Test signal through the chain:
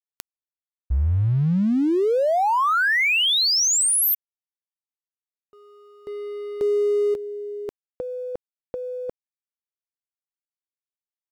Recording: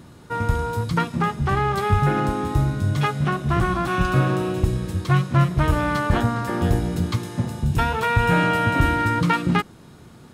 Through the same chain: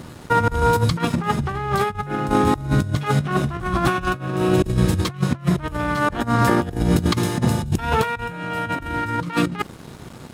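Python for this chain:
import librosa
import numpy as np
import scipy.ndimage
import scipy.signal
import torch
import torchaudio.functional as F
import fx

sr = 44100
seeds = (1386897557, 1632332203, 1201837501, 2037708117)

y = np.sign(x) * np.maximum(np.abs(x) - 10.0 ** (-50.0 / 20.0), 0.0)
y = fx.over_compress(y, sr, threshold_db=-26.0, ratio=-0.5)
y = F.gain(torch.from_numpy(y), 6.0).numpy()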